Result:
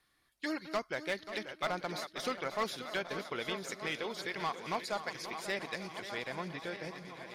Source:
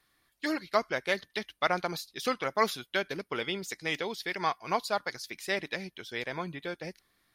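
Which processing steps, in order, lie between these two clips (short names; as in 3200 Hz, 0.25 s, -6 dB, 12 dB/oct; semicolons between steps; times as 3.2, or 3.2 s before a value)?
regenerating reverse delay 0.615 s, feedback 64%, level -13 dB; LPF 12000 Hz 12 dB/oct; in parallel at -2.5 dB: compressor, threshold -36 dBFS, peak gain reduction 15 dB; on the sum: overloaded stage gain 19 dB; on a send: swung echo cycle 0.891 s, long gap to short 1.5:1, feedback 36%, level -12 dB; on the sum: gain -7.5 dB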